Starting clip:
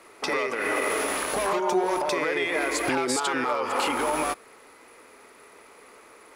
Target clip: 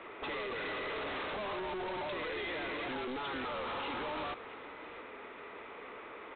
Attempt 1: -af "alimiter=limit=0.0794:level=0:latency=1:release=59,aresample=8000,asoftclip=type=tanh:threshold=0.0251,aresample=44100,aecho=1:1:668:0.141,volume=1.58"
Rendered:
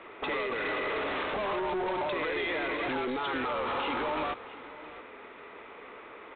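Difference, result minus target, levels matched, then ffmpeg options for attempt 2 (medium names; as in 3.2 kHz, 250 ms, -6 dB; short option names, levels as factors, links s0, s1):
saturation: distortion -5 dB
-af "alimiter=limit=0.0794:level=0:latency=1:release=59,aresample=8000,asoftclip=type=tanh:threshold=0.00891,aresample=44100,aecho=1:1:668:0.141,volume=1.58"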